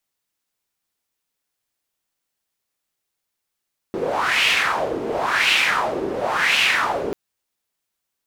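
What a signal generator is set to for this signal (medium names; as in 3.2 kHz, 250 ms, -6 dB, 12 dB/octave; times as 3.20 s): wind-like swept noise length 3.19 s, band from 390 Hz, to 2.7 kHz, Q 3.4, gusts 3, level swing 8 dB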